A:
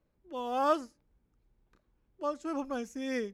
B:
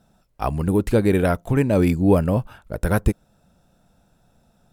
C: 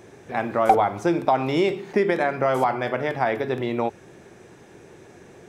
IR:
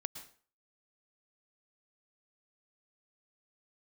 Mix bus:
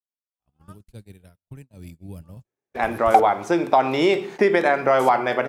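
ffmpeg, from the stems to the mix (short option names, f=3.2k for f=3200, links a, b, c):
-filter_complex "[0:a]highpass=1.1k,volume=-19.5dB[a];[1:a]acrossover=split=160|3000[b][c][d];[c]acompressor=threshold=-38dB:ratio=3[e];[b][e][d]amix=inputs=3:normalize=0,volume=-19dB,asplit=2[f][g];[g]volume=-4.5dB[h];[2:a]lowshelf=f=140:g=-12,adelay=2450,volume=1.5dB[i];[3:a]atrim=start_sample=2205[j];[h][j]afir=irnorm=-1:irlink=0[k];[a][f][i][k]amix=inputs=4:normalize=0,agate=range=-45dB:threshold=-38dB:ratio=16:detection=peak,lowshelf=f=110:g=-5,dynaudnorm=f=120:g=9:m=4dB"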